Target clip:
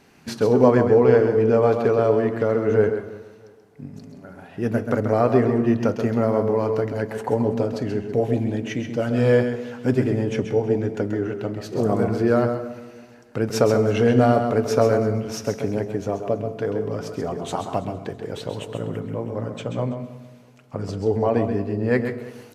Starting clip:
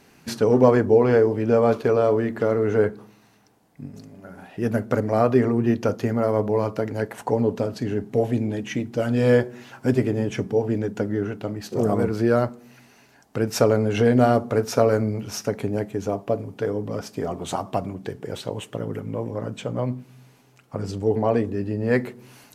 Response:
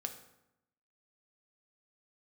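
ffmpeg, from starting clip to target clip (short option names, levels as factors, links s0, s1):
-filter_complex "[0:a]highshelf=f=8000:g=-6.5,aecho=1:1:328|656|984:0.0891|0.0303|0.0103,asplit=2[s0][s1];[1:a]atrim=start_sample=2205,asetrate=38367,aresample=44100,adelay=132[s2];[s1][s2]afir=irnorm=-1:irlink=0,volume=0.473[s3];[s0][s3]amix=inputs=2:normalize=0,aresample=32000,aresample=44100"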